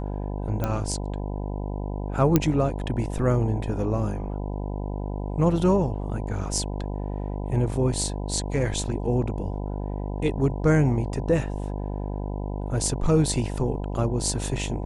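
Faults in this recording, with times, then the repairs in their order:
buzz 50 Hz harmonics 20 -30 dBFS
0.64 pop -13 dBFS
2.36 pop -5 dBFS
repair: de-click; de-hum 50 Hz, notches 20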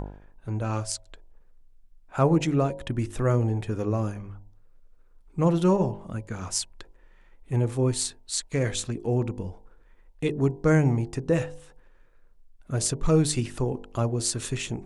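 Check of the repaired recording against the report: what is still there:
none

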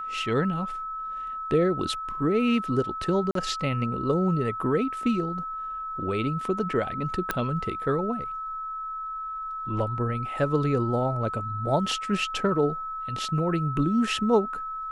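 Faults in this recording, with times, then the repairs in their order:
tone 1300 Hz -31 dBFS
3.31–3.35 gap 43 ms
7.31 pop -11 dBFS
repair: de-click; notch 1300 Hz, Q 30; interpolate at 3.31, 43 ms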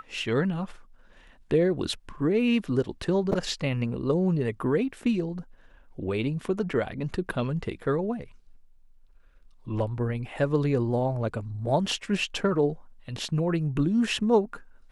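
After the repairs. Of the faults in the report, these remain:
none

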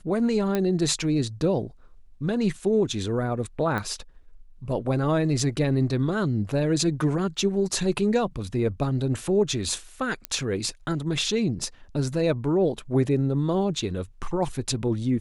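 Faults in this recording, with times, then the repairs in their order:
0.55 pop -12 dBFS
3.78 pop -17 dBFS
10.25 pop -12 dBFS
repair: de-click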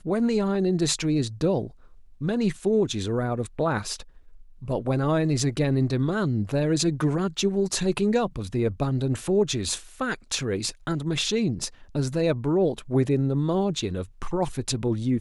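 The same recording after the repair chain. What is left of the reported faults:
none

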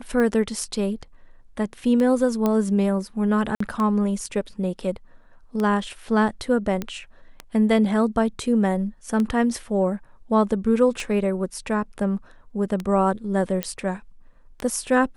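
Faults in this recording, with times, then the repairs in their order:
tick 33 1/3 rpm -15 dBFS
2.46 pop -10 dBFS
3.55–3.6 gap 54 ms
6.82 pop -14 dBFS
13.63 pop -9 dBFS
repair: de-click; interpolate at 3.55, 54 ms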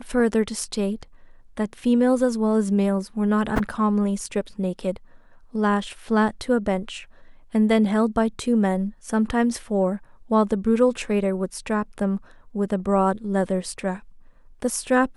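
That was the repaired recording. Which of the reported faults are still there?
none

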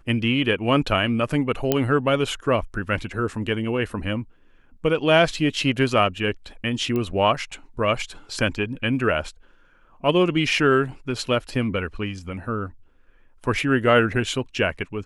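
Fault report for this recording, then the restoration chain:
1.72 pop -5 dBFS
6.96 pop -15 dBFS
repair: de-click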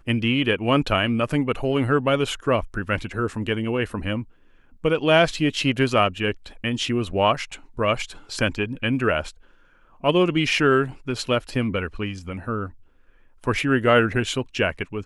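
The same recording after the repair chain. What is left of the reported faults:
none

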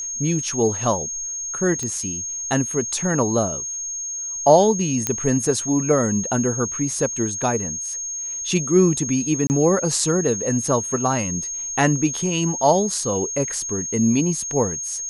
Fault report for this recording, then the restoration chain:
tone 6500 Hz -26 dBFS
1.83 pop -14 dBFS
5.07 pop -5 dBFS
9.47–9.5 gap 29 ms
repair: de-click; notch 6500 Hz, Q 30; interpolate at 9.47, 29 ms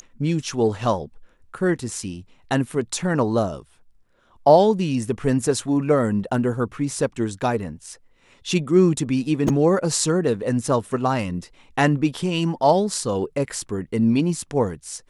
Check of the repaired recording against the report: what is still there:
1.83 pop

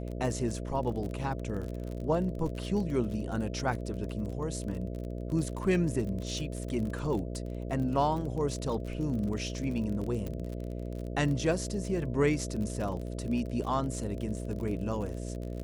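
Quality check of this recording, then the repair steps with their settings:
buzz 60 Hz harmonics 11 -37 dBFS
crackle 37/s -36 dBFS
10.27 pop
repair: de-click; de-hum 60 Hz, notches 11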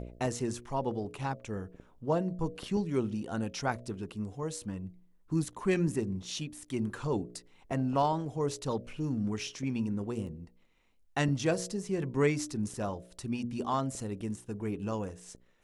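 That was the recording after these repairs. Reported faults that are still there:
10.27 pop

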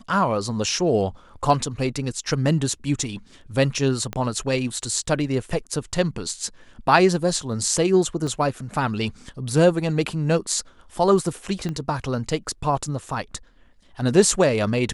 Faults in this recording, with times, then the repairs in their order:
4.13 pop -14 dBFS
8.27 gap 2.1 ms
11.69 pop -17 dBFS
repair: de-click; interpolate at 8.27, 2.1 ms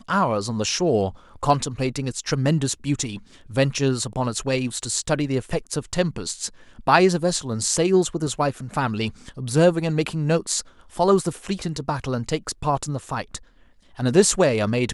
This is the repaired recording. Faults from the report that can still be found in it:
4.13 pop
11.69 pop

